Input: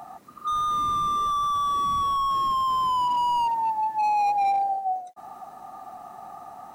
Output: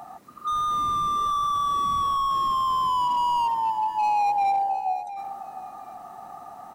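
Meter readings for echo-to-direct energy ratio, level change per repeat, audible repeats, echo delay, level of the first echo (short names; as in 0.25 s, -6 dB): -13.0 dB, -13.5 dB, 2, 0.71 s, -13.0 dB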